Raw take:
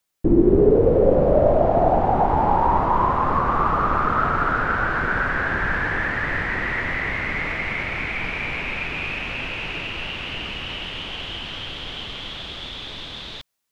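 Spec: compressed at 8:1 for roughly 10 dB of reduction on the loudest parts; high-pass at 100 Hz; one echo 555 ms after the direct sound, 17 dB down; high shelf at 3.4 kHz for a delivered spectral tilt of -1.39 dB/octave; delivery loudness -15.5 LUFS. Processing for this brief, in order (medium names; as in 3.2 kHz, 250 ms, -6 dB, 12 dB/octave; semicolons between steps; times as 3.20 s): high-pass 100 Hz; treble shelf 3.4 kHz +8 dB; compression 8:1, threshold -22 dBFS; delay 555 ms -17 dB; trim +10 dB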